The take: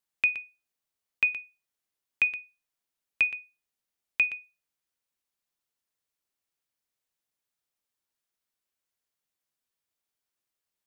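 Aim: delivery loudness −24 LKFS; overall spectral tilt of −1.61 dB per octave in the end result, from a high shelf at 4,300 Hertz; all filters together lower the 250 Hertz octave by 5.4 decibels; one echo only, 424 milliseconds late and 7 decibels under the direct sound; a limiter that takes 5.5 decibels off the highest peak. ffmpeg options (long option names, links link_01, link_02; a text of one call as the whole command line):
ffmpeg -i in.wav -af "equalizer=frequency=250:width_type=o:gain=-7.5,highshelf=frequency=4300:gain=4.5,alimiter=limit=-18.5dB:level=0:latency=1,aecho=1:1:424:0.447,volume=7.5dB" out.wav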